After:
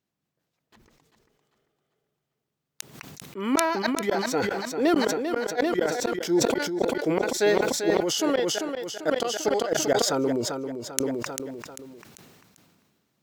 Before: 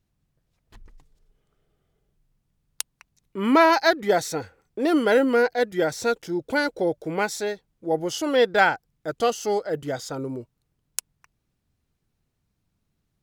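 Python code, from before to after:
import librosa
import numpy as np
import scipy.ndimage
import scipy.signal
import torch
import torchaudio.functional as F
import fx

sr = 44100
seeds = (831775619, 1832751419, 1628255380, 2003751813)

y = scipy.signal.sosfilt(scipy.signal.butter(2, 220.0, 'highpass', fs=sr, output='sos'), x)
y = fx.peak_eq(y, sr, hz=10000.0, db=-6.0, octaves=0.36)
y = fx.rider(y, sr, range_db=5, speed_s=0.5)
y = fx.gate_flip(y, sr, shuts_db=-14.0, range_db=-33)
y = fx.echo_feedback(y, sr, ms=394, feedback_pct=38, wet_db=-8)
y = fx.sustainer(y, sr, db_per_s=32.0)
y = F.gain(torch.from_numpy(y), 2.0).numpy()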